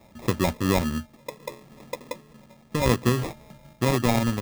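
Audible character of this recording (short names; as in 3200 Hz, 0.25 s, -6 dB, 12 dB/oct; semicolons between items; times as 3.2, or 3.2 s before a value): aliases and images of a low sample rate 1500 Hz, jitter 0%; noise-modulated level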